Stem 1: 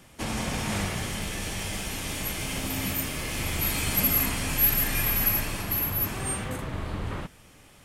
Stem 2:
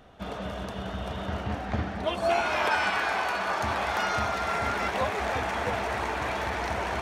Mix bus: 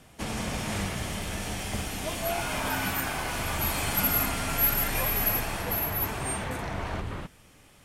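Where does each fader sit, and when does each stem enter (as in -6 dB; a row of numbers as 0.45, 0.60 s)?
-2.5, -6.5 dB; 0.00, 0.00 s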